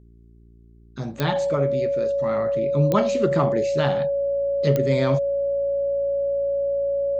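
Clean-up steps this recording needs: de-click; de-hum 57.5 Hz, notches 7; band-stop 560 Hz, Q 30

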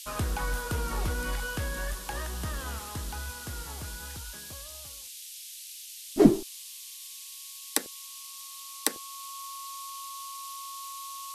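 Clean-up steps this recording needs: band-stop 1.1 kHz, Q 30; noise print and reduce 30 dB

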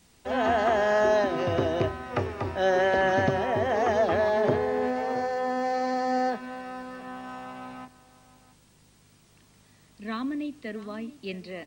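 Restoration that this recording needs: inverse comb 668 ms -18 dB

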